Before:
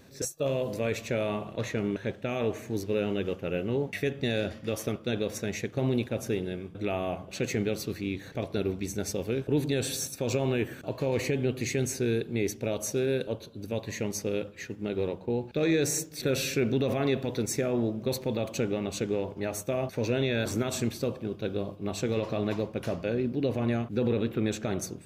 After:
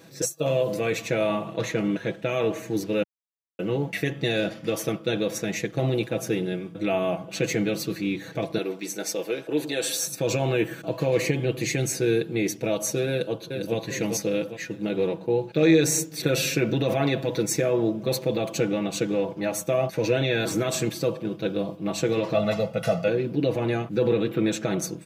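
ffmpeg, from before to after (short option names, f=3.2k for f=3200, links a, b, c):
-filter_complex "[0:a]asettb=1/sr,asplit=3[a][b][c];[a]atrim=end=8.584[d];[b]atrim=start=8.58:end=10.07,asetpts=PTS-STARTPTS,afade=t=in:d=0.004:c=qsin,afade=t=out:st=1.486:d=0.004:c=qsin,highpass=370[e];[c]atrim=start=10.066[f];[d][e]acrossfade=d=0.004:c1=hsin:c2=qsin[g];[g][f]acrossfade=d=0.004:c1=qsin:c2=hsin,asplit=2[h][i];[i]afade=t=in:st=13.1:d=0.01,afade=t=out:st=13.76:d=0.01,aecho=0:1:400|800|1200|1600|2000|2400:0.562341|0.281171|0.140585|0.0702927|0.0351463|0.0175732[j];[h][j]amix=inputs=2:normalize=0,asettb=1/sr,asplit=3[k][l][m];[k]atrim=end=22.344[n];[l]atrim=start=22.34:end=23.08,asetpts=PTS-STARTPTS,afade=t=in:d=0.004:c=qsin,afade=t=out:st=0.736:d=0.004:c=qsin,aecho=1:1:1.5:0.88,atrim=end_sample=32634[o];[m]atrim=start=23.076[p];[n][o]acrossfade=d=0.004:c1=hsin:c2=qsin[q];[q][p]acrossfade=d=0.004:c1=qsin:c2=hsin,asplit=3[r][s][t];[r]atrim=end=3.03,asetpts=PTS-STARTPTS,afade=t=out:st=3.026:d=0.004:c=hsin[u];[s]atrim=start=3.03:end=3.59,asetpts=PTS-STARTPTS,volume=0[v];[t]atrim=start=3.59,asetpts=PTS-STARTPTS,afade=t=in:d=0.004:c=hsin[w];[u][v][w]concat=n=3:v=0:a=1,highpass=120,aecho=1:1:6.1:0.78,volume=3.5dB"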